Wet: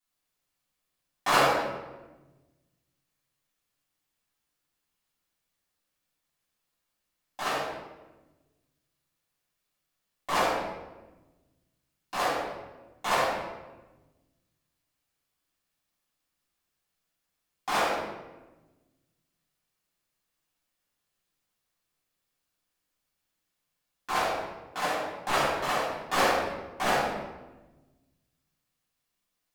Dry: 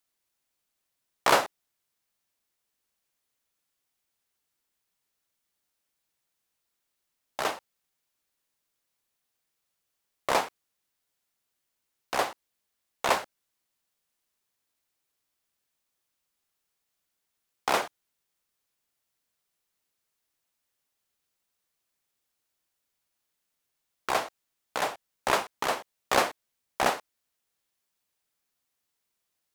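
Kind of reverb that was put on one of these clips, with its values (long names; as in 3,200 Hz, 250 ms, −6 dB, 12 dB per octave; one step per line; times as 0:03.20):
rectangular room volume 660 cubic metres, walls mixed, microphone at 8.8 metres
level −14 dB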